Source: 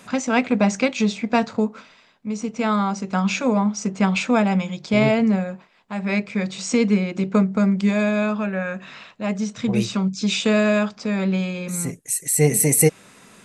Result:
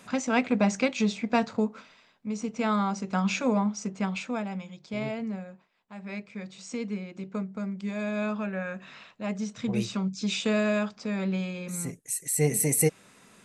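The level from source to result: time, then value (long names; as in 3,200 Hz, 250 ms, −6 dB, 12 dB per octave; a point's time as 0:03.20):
0:03.55 −5.5 dB
0:04.51 −15 dB
0:07.81 −15 dB
0:08.27 −7.5 dB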